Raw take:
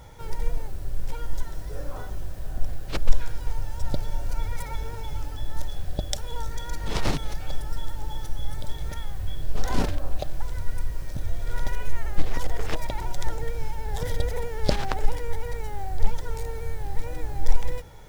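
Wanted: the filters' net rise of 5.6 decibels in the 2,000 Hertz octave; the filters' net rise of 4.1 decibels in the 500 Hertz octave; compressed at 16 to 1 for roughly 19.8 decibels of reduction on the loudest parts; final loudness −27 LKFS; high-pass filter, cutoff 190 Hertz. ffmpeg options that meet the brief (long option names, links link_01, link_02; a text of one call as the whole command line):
ffmpeg -i in.wav -af "highpass=190,equalizer=frequency=500:width_type=o:gain=4.5,equalizer=frequency=2000:width_type=o:gain=6.5,acompressor=threshold=-38dB:ratio=16,volume=15.5dB" out.wav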